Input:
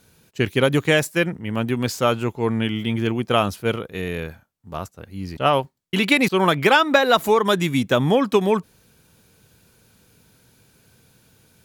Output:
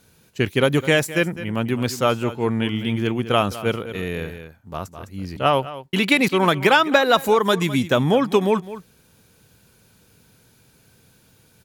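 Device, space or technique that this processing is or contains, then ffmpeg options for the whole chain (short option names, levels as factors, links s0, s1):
ducked delay: -filter_complex "[0:a]asplit=3[s0][s1][s2];[s1]adelay=208,volume=0.355[s3];[s2]apad=whole_len=522753[s4];[s3][s4]sidechaincompress=threshold=0.0891:ratio=8:attack=22:release=808[s5];[s0][s5]amix=inputs=2:normalize=0"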